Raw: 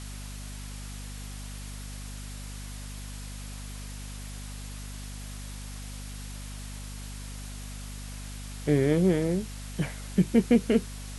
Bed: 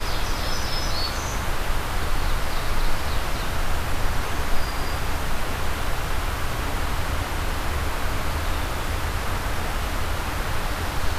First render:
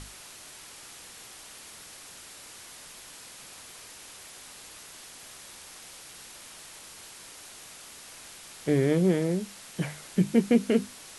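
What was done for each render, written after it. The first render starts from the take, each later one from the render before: notches 50/100/150/200/250 Hz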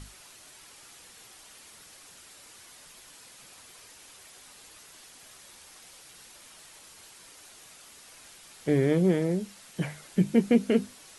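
denoiser 6 dB, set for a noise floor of -47 dBFS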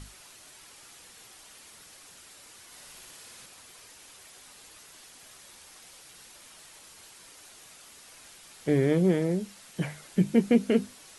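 2.66–3.46 flutter echo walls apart 9.9 m, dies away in 1 s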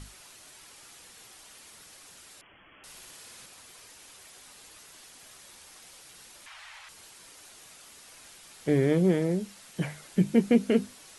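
2.41–2.84 inverted band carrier 3300 Hz; 6.46–6.89 EQ curve 100 Hz 0 dB, 170 Hz -20 dB, 400 Hz -15 dB, 810 Hz +7 dB, 2100 Hz +11 dB, 11000 Hz -10 dB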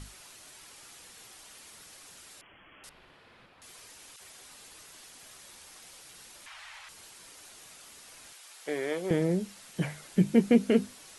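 2.89–3.62 air absorption 420 m; 4.16–4.82 dispersion lows, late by 43 ms, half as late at 1200 Hz; 8.33–9.11 HPF 610 Hz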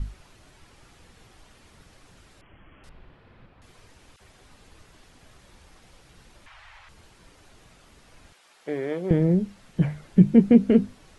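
RIAA curve playback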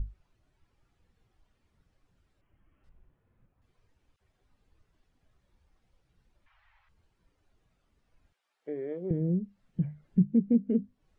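compressor 2:1, threshold -30 dBFS, peak gain reduction 11.5 dB; spectral expander 1.5:1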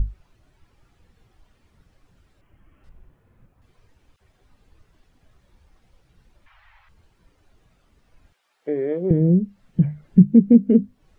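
gain +12 dB

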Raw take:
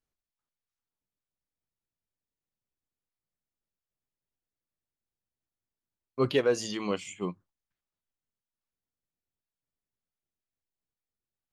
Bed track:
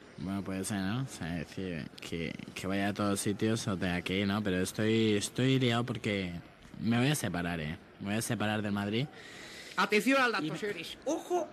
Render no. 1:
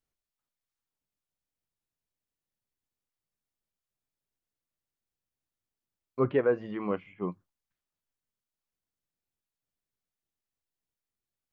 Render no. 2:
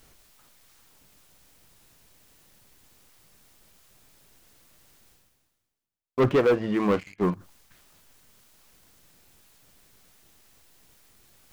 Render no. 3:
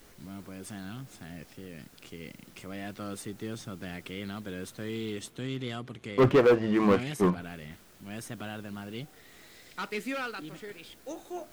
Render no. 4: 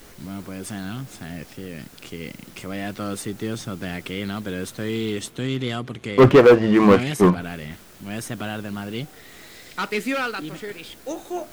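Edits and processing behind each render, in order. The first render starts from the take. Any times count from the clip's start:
6.19–7.32 LPF 1900 Hz 24 dB/oct
sample leveller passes 3; reverse; upward compressor, threshold -28 dBFS; reverse
add bed track -7.5 dB
gain +9.5 dB

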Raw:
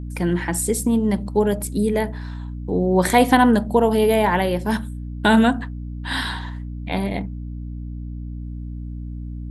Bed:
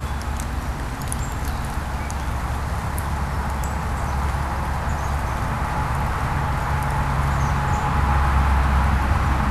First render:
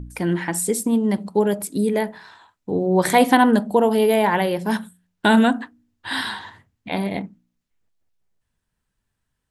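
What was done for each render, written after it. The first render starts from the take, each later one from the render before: de-hum 60 Hz, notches 5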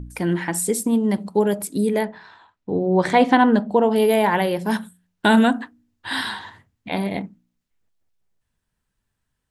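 2.05–3.96 air absorption 120 m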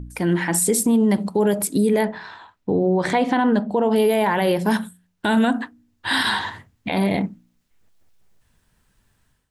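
AGC gain up to 13.5 dB; limiter -10.5 dBFS, peak gain reduction 10 dB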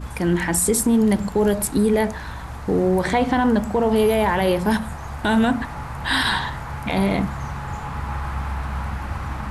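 add bed -8.5 dB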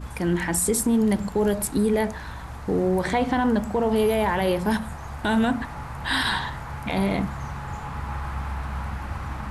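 gain -3.5 dB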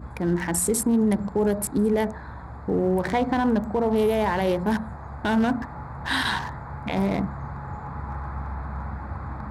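Wiener smoothing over 15 samples; HPF 60 Hz

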